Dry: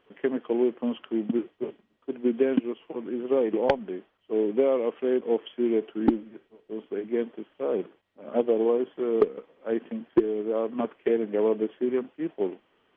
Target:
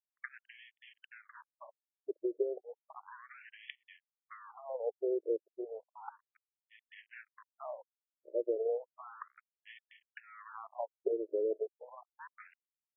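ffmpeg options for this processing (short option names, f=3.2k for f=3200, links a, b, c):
-af "adynamicequalizer=threshold=0.00631:dfrequency=180:dqfactor=2.2:tfrequency=180:tqfactor=2.2:attack=5:release=100:ratio=0.375:range=2:mode=cutabove:tftype=bell,aresample=11025,aeval=exprs='sgn(val(0))*max(abs(val(0))-0.0158,0)':c=same,aresample=44100,acompressor=threshold=-28dB:ratio=6,afftfilt=real='re*between(b*sr/1024,440*pow(2500/440,0.5+0.5*sin(2*PI*0.33*pts/sr))/1.41,440*pow(2500/440,0.5+0.5*sin(2*PI*0.33*pts/sr))*1.41)':imag='im*between(b*sr/1024,440*pow(2500/440,0.5+0.5*sin(2*PI*0.33*pts/sr))/1.41,440*pow(2500/440,0.5+0.5*sin(2*PI*0.33*pts/sr))*1.41)':win_size=1024:overlap=0.75"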